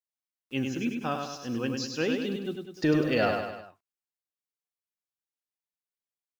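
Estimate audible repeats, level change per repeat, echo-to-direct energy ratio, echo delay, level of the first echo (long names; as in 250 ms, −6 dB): 4, −6.0 dB, −3.5 dB, 100 ms, −5.0 dB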